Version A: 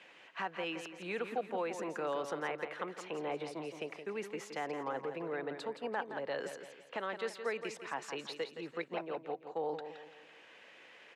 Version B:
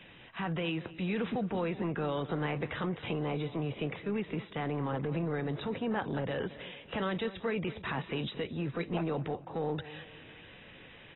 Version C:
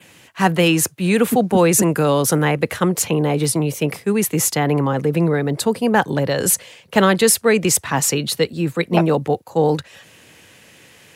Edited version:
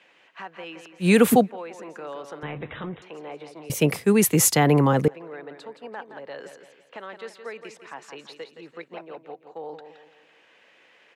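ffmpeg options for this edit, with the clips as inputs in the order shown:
-filter_complex "[2:a]asplit=2[a][b];[0:a]asplit=4[c][d][e][f];[c]atrim=end=1.09[g];[a]atrim=start=0.99:end=1.49[h];[d]atrim=start=1.39:end=2.432[i];[1:a]atrim=start=2.428:end=3.022[j];[e]atrim=start=3.018:end=3.702[k];[b]atrim=start=3.698:end=5.082[l];[f]atrim=start=5.078[m];[g][h]acrossfade=d=0.1:c1=tri:c2=tri[n];[n][i]acrossfade=d=0.1:c1=tri:c2=tri[o];[o][j]acrossfade=d=0.004:c1=hsin:c2=hsin[p];[p][k]acrossfade=d=0.004:c1=hsin:c2=hsin[q];[q][l]acrossfade=d=0.004:c1=hsin:c2=hsin[r];[r][m]acrossfade=d=0.004:c1=hsin:c2=hsin"

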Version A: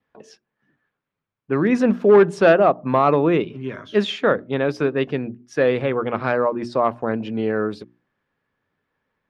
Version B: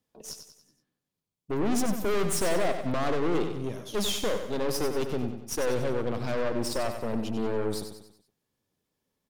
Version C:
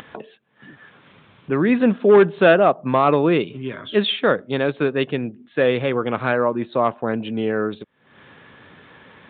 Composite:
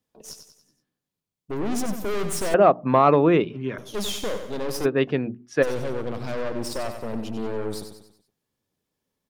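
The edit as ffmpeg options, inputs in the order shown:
-filter_complex "[0:a]asplit=2[a][b];[1:a]asplit=3[c][d][e];[c]atrim=end=2.542[f];[a]atrim=start=2.538:end=3.782[g];[d]atrim=start=3.778:end=4.86[h];[b]atrim=start=4.84:end=5.64[i];[e]atrim=start=5.62[j];[f][g]acrossfade=d=0.004:c1=hsin:c2=hsin[k];[k][h]acrossfade=d=0.004:c1=hsin:c2=hsin[l];[l][i]acrossfade=d=0.02:c1=tri:c2=tri[m];[m][j]acrossfade=d=0.02:c1=tri:c2=tri"

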